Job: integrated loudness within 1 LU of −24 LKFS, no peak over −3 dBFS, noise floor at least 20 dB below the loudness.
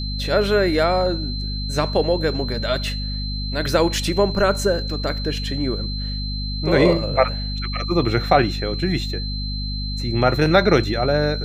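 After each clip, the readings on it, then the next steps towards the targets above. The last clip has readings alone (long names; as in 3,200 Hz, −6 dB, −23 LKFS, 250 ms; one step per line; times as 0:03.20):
mains hum 50 Hz; hum harmonics up to 250 Hz; level of the hum −24 dBFS; interfering tone 4,100 Hz; level of the tone −30 dBFS; integrated loudness −21.0 LKFS; sample peak −2.5 dBFS; target loudness −24.0 LKFS
→ hum removal 50 Hz, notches 5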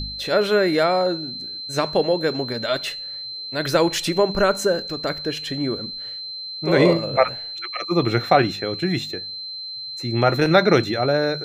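mains hum none found; interfering tone 4,100 Hz; level of the tone −30 dBFS
→ notch filter 4,100 Hz, Q 30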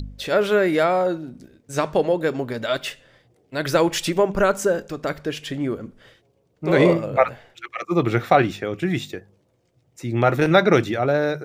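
interfering tone none found; integrated loudness −21.0 LKFS; sample peak −3.0 dBFS; target loudness −24.0 LKFS
→ level −3 dB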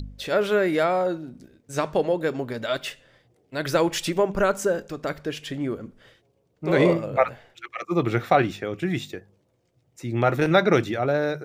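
integrated loudness −24.0 LKFS; sample peak −6.0 dBFS; background noise floor −67 dBFS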